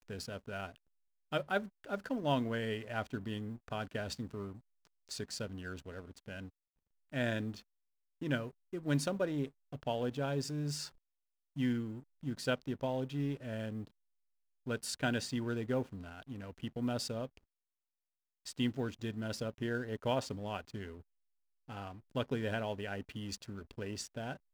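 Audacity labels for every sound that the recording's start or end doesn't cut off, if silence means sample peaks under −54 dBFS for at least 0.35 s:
1.320000	6.490000	sound
7.120000	7.620000	sound
8.210000	10.890000	sound
11.560000	13.880000	sound
14.660000	17.370000	sound
18.460000	21.020000	sound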